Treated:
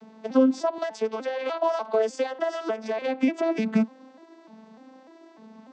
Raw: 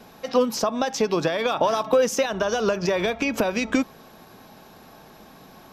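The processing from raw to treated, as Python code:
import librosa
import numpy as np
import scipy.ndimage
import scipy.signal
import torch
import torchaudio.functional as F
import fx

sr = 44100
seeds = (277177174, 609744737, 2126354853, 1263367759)

y = fx.vocoder_arp(x, sr, chord='minor triad', root=57, every_ms=298)
y = fx.highpass(y, sr, hz=510.0, slope=12, at=(0.78, 3.02))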